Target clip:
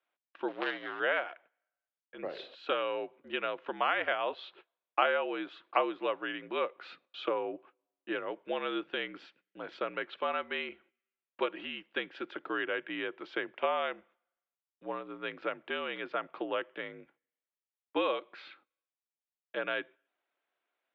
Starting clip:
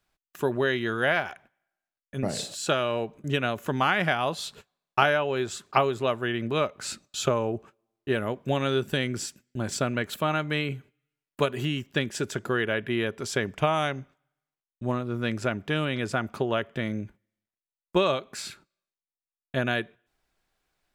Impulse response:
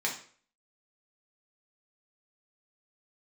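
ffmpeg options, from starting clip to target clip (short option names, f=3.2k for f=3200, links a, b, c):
-filter_complex "[0:a]asettb=1/sr,asplit=3[a][b][c];[a]atrim=end=0.484[d];[b]atrim=start=0.48:end=1,asetpts=PTS-STARTPTS,afade=t=in:d=0.004:c=qsin,afade=t=out:st=0.516:d=0.004:c=qsin,acrusher=bits=4:dc=4:mix=0:aa=0.000001[e];[c]atrim=start=0.996[f];[d][e]acrossfade=d=0.004:c1=hsin:c2=qsin[g];[g][f]acrossfade=d=0.004:c1=qsin:c2=hsin,highpass=f=410:t=q:w=0.5412,highpass=f=410:t=q:w=1.307,lowpass=f=3.5k:t=q:w=0.5176,lowpass=f=3.5k:t=q:w=0.7071,lowpass=f=3.5k:t=q:w=1.932,afreqshift=-59,volume=-5.5dB"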